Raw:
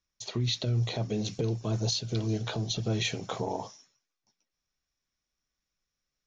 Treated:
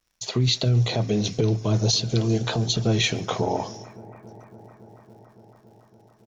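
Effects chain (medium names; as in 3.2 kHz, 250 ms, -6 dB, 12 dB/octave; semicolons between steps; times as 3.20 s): speakerphone echo 140 ms, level -22 dB; vibrato 0.5 Hz 55 cents; on a send: bucket-brigade echo 280 ms, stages 4096, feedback 82%, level -20.5 dB; on the sum: crackle 120 per s -61 dBFS; trim +8 dB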